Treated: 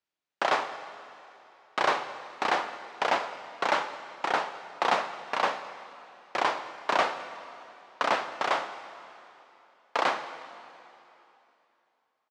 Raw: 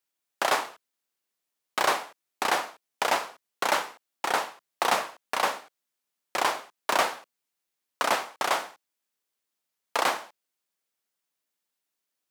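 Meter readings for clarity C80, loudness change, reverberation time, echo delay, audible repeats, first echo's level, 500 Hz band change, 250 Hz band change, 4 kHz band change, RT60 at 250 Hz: 12.0 dB, −1.5 dB, 3.0 s, 214 ms, 1, −23.0 dB, 0.0 dB, 0.0 dB, −3.5 dB, 3.0 s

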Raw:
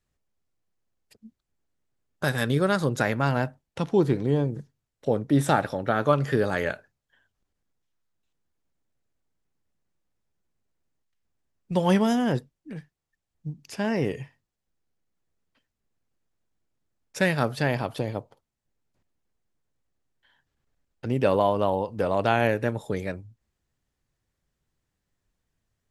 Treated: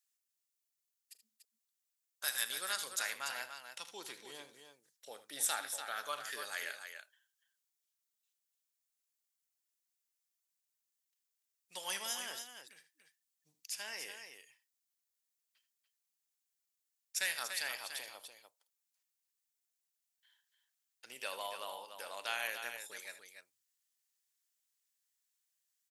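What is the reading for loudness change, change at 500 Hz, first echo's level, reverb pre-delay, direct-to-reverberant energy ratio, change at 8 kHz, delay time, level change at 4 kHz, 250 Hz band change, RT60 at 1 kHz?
−14.5 dB, −25.5 dB, −17.5 dB, no reverb audible, no reverb audible, +4.5 dB, 41 ms, −2.5 dB, −37.5 dB, no reverb audible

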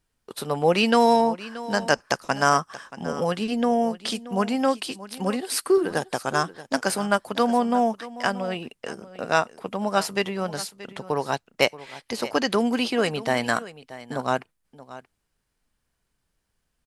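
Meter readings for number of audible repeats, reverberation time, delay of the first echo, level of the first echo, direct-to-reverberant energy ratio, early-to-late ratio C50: 1, no reverb audible, 629 ms, −16.5 dB, no reverb audible, no reverb audible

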